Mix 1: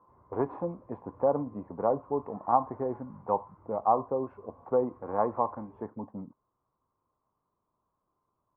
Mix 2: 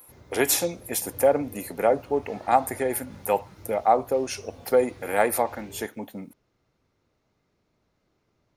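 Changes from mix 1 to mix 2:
speech: add spectral tilt +4.5 dB per octave
master: remove transistor ladder low-pass 1,100 Hz, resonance 85%

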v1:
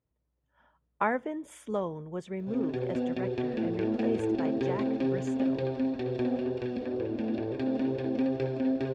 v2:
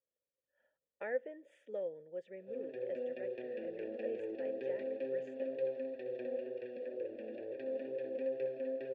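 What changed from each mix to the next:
master: add formant filter e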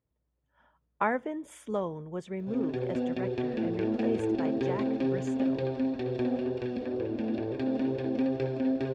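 master: remove formant filter e

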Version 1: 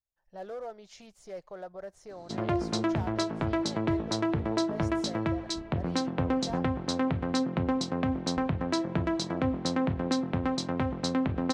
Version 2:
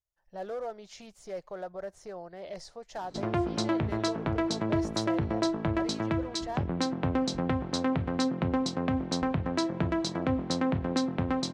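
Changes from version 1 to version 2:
speech +3.0 dB
background: entry +0.85 s

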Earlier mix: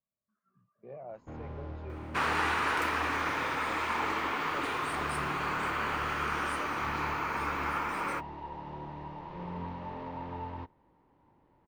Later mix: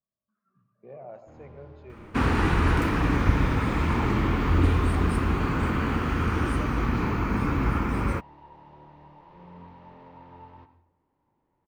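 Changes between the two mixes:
first sound −9.5 dB
second sound: remove high-pass filter 680 Hz 12 dB per octave
reverb: on, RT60 0.65 s

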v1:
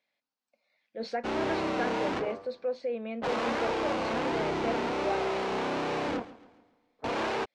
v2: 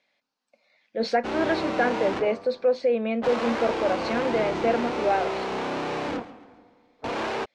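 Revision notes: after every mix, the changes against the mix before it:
speech +10.0 dB
background: send +11.5 dB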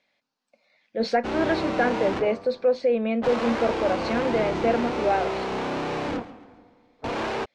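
master: add low-shelf EQ 150 Hz +7.5 dB

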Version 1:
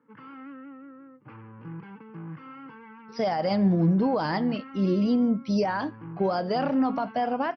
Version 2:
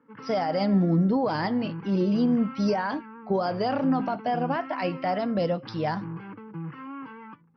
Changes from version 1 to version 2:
speech: entry −2.90 s
background +3.5 dB

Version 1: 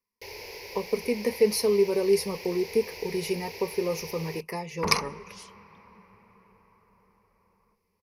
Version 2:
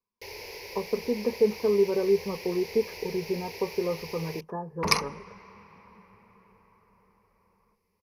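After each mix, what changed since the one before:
speech: add Chebyshev low-pass filter 1,700 Hz, order 10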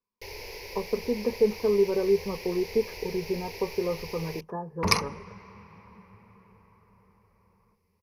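first sound: remove high-pass filter 130 Hz 6 dB per octave
second sound: add parametric band 99 Hz +9.5 dB 1.7 octaves

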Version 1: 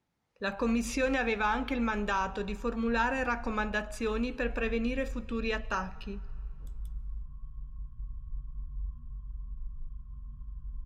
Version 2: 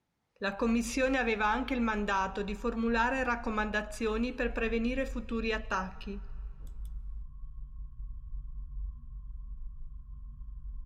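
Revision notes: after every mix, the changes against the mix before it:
background: send off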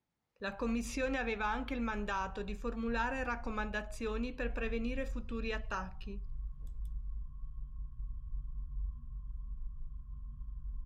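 speech −5.5 dB
reverb: off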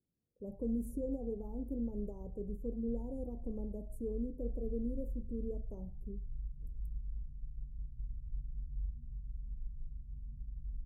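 master: add inverse Chebyshev band-stop filter 1,500–4,100 Hz, stop band 70 dB

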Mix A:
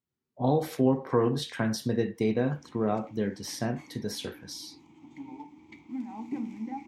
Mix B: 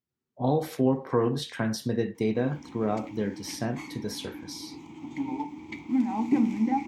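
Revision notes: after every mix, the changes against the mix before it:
background +11.0 dB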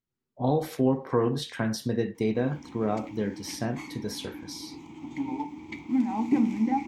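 master: remove high-pass filter 59 Hz

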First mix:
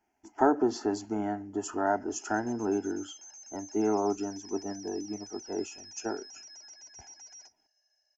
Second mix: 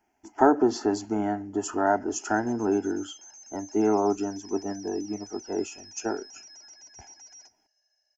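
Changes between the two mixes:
speech +4.5 dB
reverb: on, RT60 0.75 s

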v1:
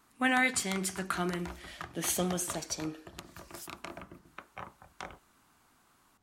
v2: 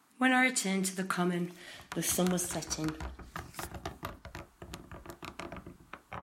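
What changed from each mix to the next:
background: entry +1.55 s
master: add low-shelf EQ 200 Hz +6.5 dB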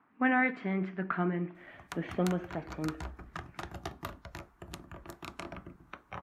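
speech: add low-pass filter 2,100 Hz 24 dB per octave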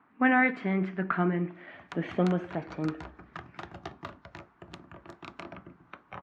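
speech +4.0 dB
background: add band-pass filter 100–4,200 Hz

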